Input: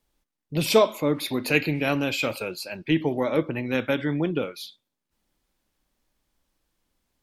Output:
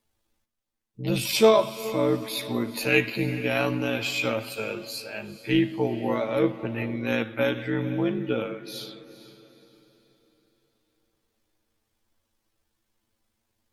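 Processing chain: granular stretch 1.9×, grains 38 ms; echo that smears into a reverb 456 ms, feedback 40%, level -15 dB

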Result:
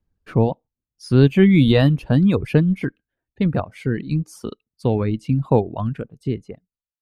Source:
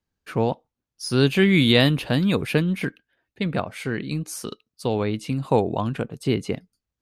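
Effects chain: fade out at the end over 1.59 s; tilt EQ -3 dB/octave; reverb removal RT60 1.3 s

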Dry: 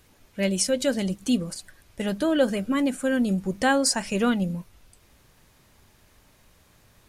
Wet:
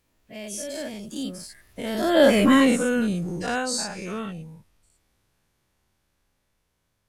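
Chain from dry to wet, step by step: every event in the spectrogram widened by 120 ms; Doppler pass-by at 2.47 s, 28 m/s, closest 5.7 m; trim +5 dB

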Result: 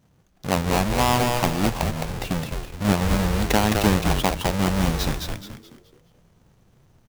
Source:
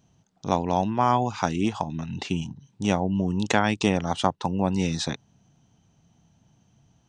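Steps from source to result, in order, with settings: square wave that keeps the level; frequency-shifting echo 213 ms, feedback 35%, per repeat -130 Hz, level -3.5 dB; trim -3 dB

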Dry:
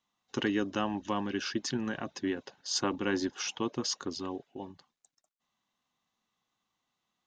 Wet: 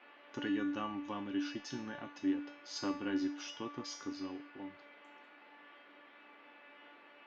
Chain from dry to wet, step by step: band noise 240–2600 Hz -51 dBFS; distance through air 110 m; feedback comb 290 Hz, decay 0.48 s, harmonics all, mix 90%; trim +7.5 dB

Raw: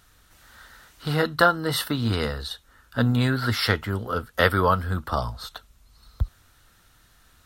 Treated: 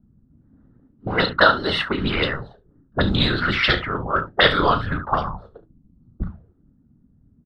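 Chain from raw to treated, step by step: hum notches 50/100/150/200/250/300 Hz; vibrato 12 Hz 50 cents; whisper effect; early reflections 34 ms -10.5 dB, 71 ms -13.5 dB; touch-sensitive low-pass 230–3800 Hz up, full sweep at -19.5 dBFS; trim +1.5 dB

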